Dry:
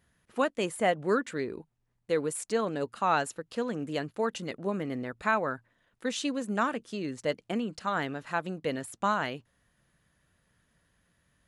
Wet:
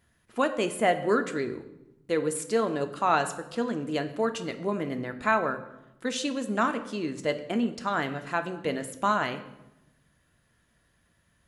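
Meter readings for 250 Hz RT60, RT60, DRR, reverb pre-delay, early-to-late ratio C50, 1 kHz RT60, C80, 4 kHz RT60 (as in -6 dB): 1.3 s, 0.95 s, 7.5 dB, 3 ms, 12.5 dB, 0.90 s, 14.5 dB, 0.70 s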